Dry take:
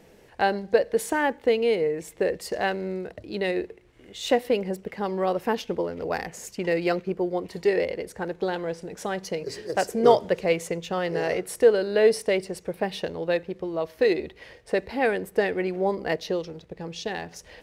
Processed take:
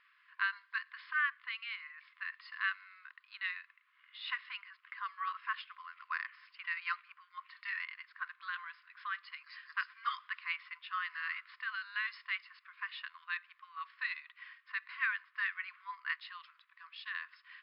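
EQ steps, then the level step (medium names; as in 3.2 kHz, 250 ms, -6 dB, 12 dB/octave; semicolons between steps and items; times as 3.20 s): brick-wall FIR band-pass 1–5.3 kHz; distance through air 270 m; treble shelf 2.7 kHz -9 dB; +2.0 dB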